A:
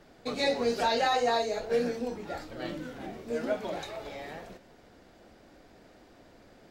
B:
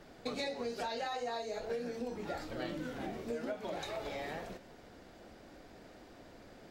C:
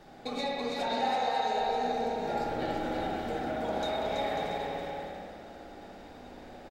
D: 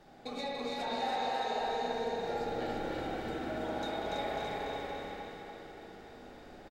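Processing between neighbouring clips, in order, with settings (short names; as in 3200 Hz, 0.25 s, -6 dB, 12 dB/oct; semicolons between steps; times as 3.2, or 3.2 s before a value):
compressor 12:1, threshold -36 dBFS, peak gain reduction 14 dB; gain +1 dB
small resonant body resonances 810/3700 Hz, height 12 dB, ringing for 45 ms; on a send: bouncing-ball echo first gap 0.33 s, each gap 0.65×, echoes 5; on the sum: spring tank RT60 1.8 s, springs 57 ms, chirp 50 ms, DRR -1.5 dB
feedback echo 0.288 s, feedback 57%, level -4 dB; gain -5 dB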